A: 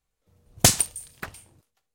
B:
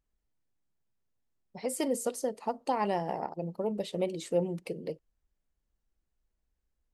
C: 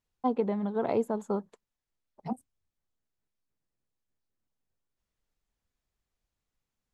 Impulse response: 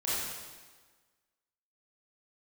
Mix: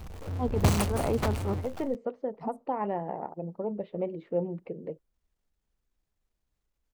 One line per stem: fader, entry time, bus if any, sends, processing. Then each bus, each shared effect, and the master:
−9.0 dB, 0.00 s, no send, running median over 25 samples; parametric band 86 Hz +8.5 dB 0.51 octaves; power curve on the samples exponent 0.35
−0.5 dB, 0.00 s, no send, Bessel low-pass filter 1,400 Hz, order 4
+2.0 dB, 0.15 s, no send, transient designer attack −11 dB, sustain −7 dB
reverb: not used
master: no processing

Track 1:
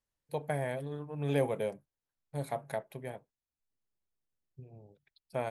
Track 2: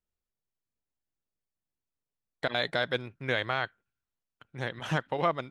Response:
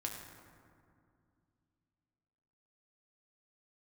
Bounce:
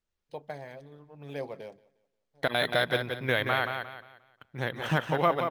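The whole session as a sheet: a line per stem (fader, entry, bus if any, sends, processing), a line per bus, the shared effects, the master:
−11.5 dB, 0.00 s, no send, echo send −22.5 dB, harmonic and percussive parts rebalanced percussive +8 dB; automatic ducking −22 dB, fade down 0.55 s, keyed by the second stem
+2.5 dB, 0.00 s, no send, echo send −6.5 dB, no processing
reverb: not used
echo: repeating echo 177 ms, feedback 32%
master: linearly interpolated sample-rate reduction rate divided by 3×

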